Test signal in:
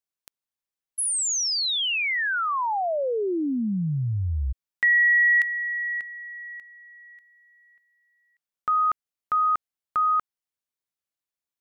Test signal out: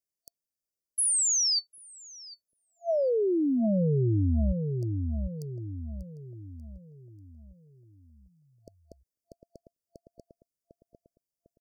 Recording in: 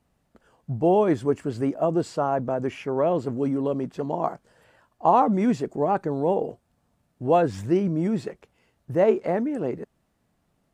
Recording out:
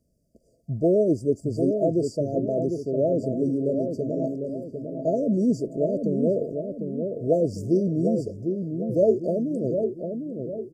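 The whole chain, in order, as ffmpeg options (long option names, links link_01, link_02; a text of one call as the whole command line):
ffmpeg -i in.wav -filter_complex "[0:a]afftfilt=real='re*(1-between(b*sr/4096,680,4500))':imag='im*(1-between(b*sr/4096,680,4500))':win_size=4096:overlap=0.75,asplit=2[link_01][link_02];[link_02]adelay=751,lowpass=frequency=870:poles=1,volume=-5dB,asplit=2[link_03][link_04];[link_04]adelay=751,lowpass=frequency=870:poles=1,volume=0.47,asplit=2[link_05][link_06];[link_06]adelay=751,lowpass=frequency=870:poles=1,volume=0.47,asplit=2[link_07][link_08];[link_08]adelay=751,lowpass=frequency=870:poles=1,volume=0.47,asplit=2[link_09][link_10];[link_10]adelay=751,lowpass=frequency=870:poles=1,volume=0.47,asplit=2[link_11][link_12];[link_12]adelay=751,lowpass=frequency=870:poles=1,volume=0.47[link_13];[link_03][link_05][link_07][link_09][link_11][link_13]amix=inputs=6:normalize=0[link_14];[link_01][link_14]amix=inputs=2:normalize=0" out.wav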